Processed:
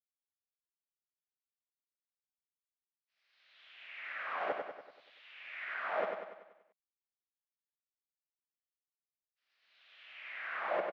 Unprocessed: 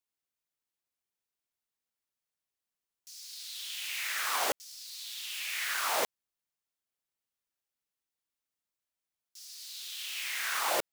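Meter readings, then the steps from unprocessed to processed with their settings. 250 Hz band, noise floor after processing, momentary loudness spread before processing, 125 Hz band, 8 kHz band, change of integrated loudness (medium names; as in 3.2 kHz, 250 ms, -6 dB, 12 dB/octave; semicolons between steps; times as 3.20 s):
-3.0 dB, under -85 dBFS, 15 LU, no reading, under -40 dB, -6.5 dB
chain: expander -42 dBFS; cabinet simulation 150–2200 Hz, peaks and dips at 190 Hz +8 dB, 620 Hz +7 dB, 930 Hz -4 dB; feedback delay 96 ms, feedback 52%, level -5 dB; trim -5.5 dB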